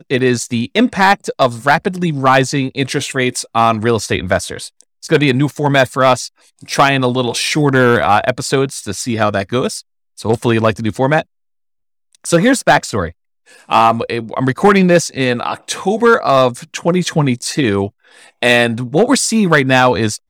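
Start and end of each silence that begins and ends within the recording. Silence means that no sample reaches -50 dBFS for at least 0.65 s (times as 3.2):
11.24–12.13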